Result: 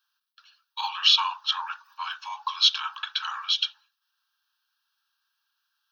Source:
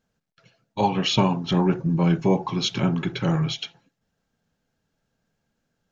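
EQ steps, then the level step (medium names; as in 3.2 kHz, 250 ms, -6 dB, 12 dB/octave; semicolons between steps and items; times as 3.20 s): steep high-pass 960 Hz 48 dB/octave; treble shelf 2.7 kHz +8 dB; static phaser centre 2.1 kHz, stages 6; +3.0 dB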